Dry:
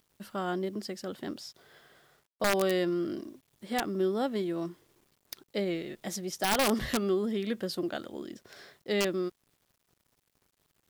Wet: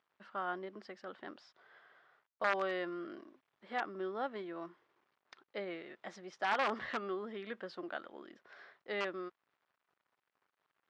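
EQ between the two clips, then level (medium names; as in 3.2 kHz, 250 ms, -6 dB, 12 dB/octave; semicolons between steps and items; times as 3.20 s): band-pass filter 1.3 kHz, Q 1.1; distance through air 120 m; 0.0 dB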